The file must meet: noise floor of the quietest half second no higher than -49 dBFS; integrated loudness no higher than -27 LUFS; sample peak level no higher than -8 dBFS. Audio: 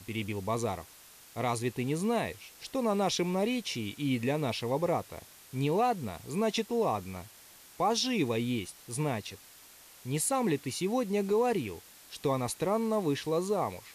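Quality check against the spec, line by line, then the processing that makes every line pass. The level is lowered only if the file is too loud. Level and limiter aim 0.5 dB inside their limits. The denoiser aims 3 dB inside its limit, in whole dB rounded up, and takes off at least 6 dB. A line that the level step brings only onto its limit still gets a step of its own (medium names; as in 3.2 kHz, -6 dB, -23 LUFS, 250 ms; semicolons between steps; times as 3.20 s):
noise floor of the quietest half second -55 dBFS: pass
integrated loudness -31.5 LUFS: pass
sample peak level -18.0 dBFS: pass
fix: none needed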